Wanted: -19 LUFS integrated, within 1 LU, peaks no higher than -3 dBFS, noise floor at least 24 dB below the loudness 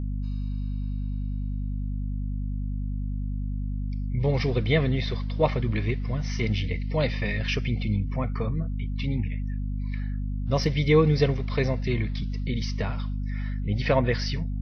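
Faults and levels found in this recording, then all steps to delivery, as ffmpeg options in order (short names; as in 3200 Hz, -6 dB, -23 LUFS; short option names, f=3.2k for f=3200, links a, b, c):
hum 50 Hz; harmonics up to 250 Hz; hum level -26 dBFS; loudness -28.0 LUFS; peak -8.5 dBFS; loudness target -19.0 LUFS
-> -af "bandreject=f=50:t=h:w=4,bandreject=f=100:t=h:w=4,bandreject=f=150:t=h:w=4,bandreject=f=200:t=h:w=4,bandreject=f=250:t=h:w=4"
-af "volume=9dB,alimiter=limit=-3dB:level=0:latency=1"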